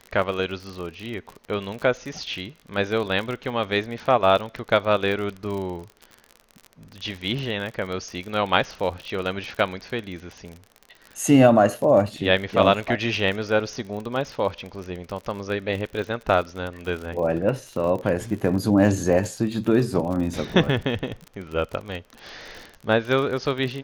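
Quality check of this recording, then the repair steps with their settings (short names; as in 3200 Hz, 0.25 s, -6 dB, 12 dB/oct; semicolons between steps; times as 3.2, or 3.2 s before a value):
crackle 45/s -30 dBFS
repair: de-click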